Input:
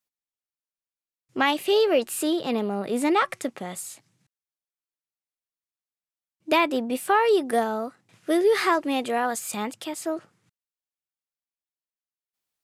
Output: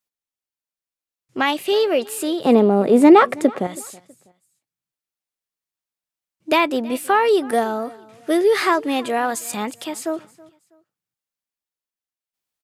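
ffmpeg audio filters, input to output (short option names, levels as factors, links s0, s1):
-filter_complex "[0:a]asettb=1/sr,asplit=3[s0][s1][s2];[s0]atrim=end=2.454[s3];[s1]atrim=start=2.45:end=3.67,asetpts=PTS-STARTPTS,afade=t=in:d=0.004:c=qsin,afade=t=out:st=1.216:d=0.004:c=qsin,equalizer=f=370:w=0.33:g=12.5[s4];[s2]atrim=start=3.666[s5];[s3][s4]acrossfade=d=0.004:c1=hsin:c2=qsin[s6];[s6][s5]acrossfade=d=0.004:c1=qsin:c2=hsin,dynaudnorm=f=260:g=9:m=1.41,aecho=1:1:324|648:0.075|0.0247,volume=1.12"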